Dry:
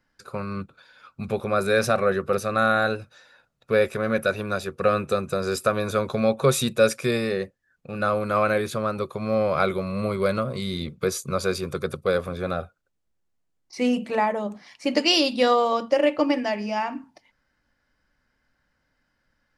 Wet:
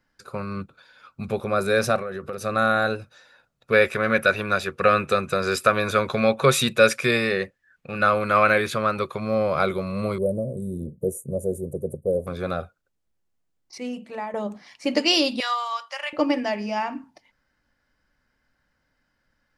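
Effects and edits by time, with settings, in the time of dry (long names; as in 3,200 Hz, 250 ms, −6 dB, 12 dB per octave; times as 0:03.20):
0:01.96–0:02.41: downward compressor, threshold −28 dBFS
0:03.72–0:09.20: parametric band 2,100 Hz +9 dB 1.9 octaves
0:10.18–0:12.27: elliptic band-stop filter 610–8,800 Hz
0:13.78–0:14.34: clip gain −9.5 dB
0:15.40–0:16.13: high-pass filter 1,000 Hz 24 dB per octave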